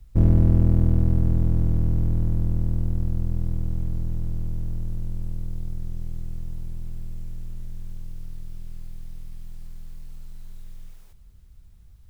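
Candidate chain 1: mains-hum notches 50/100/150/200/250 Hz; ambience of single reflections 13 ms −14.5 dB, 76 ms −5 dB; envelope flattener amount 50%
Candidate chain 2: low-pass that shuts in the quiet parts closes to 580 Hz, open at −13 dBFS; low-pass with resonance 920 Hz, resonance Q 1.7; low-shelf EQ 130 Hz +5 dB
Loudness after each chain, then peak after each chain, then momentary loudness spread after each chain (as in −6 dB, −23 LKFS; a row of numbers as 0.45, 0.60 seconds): −23.0, −22.0 LKFS; −6.0, −2.5 dBFS; 18, 23 LU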